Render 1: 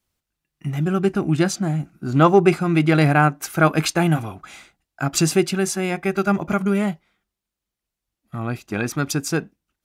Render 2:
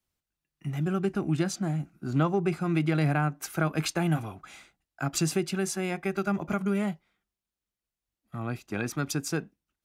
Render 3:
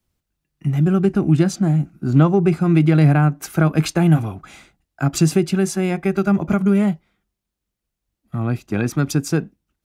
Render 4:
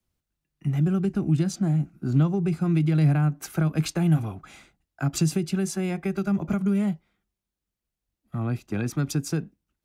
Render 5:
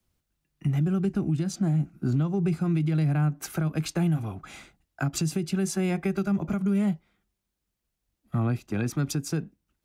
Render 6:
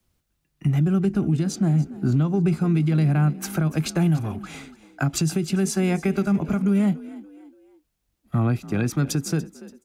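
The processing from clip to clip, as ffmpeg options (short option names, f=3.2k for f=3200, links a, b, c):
-filter_complex "[0:a]acrossover=split=200[a][b];[b]acompressor=threshold=-18dB:ratio=6[c];[a][c]amix=inputs=2:normalize=0,volume=-7dB"
-af "lowshelf=f=430:g=9,volume=5dB"
-filter_complex "[0:a]acrossover=split=230|3000[a][b][c];[b]acompressor=threshold=-24dB:ratio=6[d];[a][d][c]amix=inputs=3:normalize=0,volume=-5.5dB"
-af "alimiter=limit=-22dB:level=0:latency=1:release=435,volume=4dB"
-filter_complex "[0:a]asplit=4[a][b][c][d];[b]adelay=288,afreqshift=48,volume=-18dB[e];[c]adelay=576,afreqshift=96,volume=-26.6dB[f];[d]adelay=864,afreqshift=144,volume=-35.3dB[g];[a][e][f][g]amix=inputs=4:normalize=0,volume=4.5dB"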